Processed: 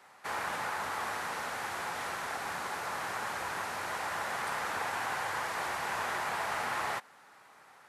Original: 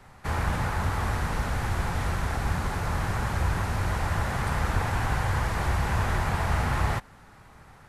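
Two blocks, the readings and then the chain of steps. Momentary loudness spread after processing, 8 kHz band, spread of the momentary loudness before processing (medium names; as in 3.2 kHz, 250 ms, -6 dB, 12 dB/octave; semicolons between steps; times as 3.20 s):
3 LU, -2.0 dB, 3 LU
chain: Bessel high-pass 580 Hz, order 2; trim -2 dB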